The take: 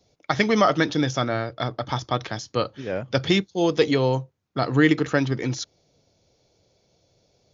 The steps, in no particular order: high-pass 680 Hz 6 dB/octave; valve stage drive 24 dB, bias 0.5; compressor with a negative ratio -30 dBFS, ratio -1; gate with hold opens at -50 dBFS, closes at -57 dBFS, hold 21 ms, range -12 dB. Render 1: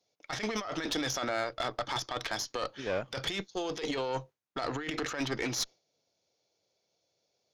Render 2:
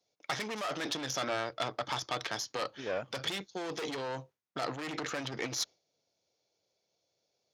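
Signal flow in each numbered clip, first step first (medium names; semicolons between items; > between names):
high-pass > compressor with a negative ratio > gate with hold > valve stage; gate with hold > valve stage > compressor with a negative ratio > high-pass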